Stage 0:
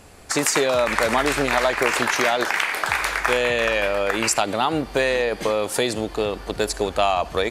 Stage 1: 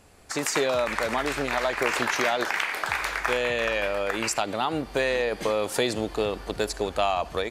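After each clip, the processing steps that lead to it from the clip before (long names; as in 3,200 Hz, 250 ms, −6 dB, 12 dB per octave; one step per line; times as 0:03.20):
dynamic equaliser 9,800 Hz, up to −4 dB, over −39 dBFS, Q 1.3
automatic gain control
level −8.5 dB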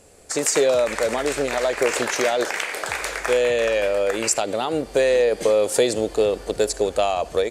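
octave-band graphic EQ 500/1,000/8,000 Hz +10/−4/+10 dB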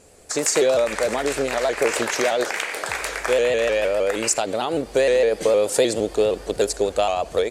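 pitch modulation by a square or saw wave saw up 6.5 Hz, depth 100 cents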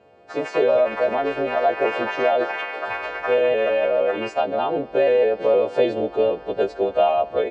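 every partial snapped to a pitch grid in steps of 2 semitones
loudspeaker in its box 100–2,400 Hz, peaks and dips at 700 Hz +6 dB, 1,300 Hz −3 dB, 2,000 Hz −10 dB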